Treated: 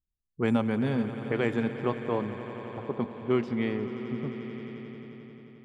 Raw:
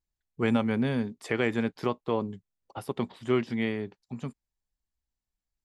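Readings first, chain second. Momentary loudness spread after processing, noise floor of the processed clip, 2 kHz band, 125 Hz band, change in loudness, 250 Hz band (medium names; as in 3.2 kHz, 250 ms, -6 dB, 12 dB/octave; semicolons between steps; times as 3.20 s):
15 LU, -84 dBFS, -2.0 dB, +1.0 dB, -0.5 dB, +0.5 dB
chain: level-controlled noise filter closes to 320 Hz, open at -21.5 dBFS; echo with a slow build-up 88 ms, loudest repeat 5, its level -16 dB; dynamic bell 3 kHz, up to -4 dB, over -47 dBFS, Q 0.7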